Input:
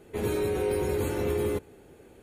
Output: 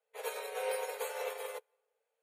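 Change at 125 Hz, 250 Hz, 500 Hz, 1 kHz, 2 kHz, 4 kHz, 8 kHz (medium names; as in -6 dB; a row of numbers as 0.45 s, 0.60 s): under -40 dB, under -35 dB, -10.5 dB, -2.5 dB, -3.0 dB, -2.5 dB, -3.0 dB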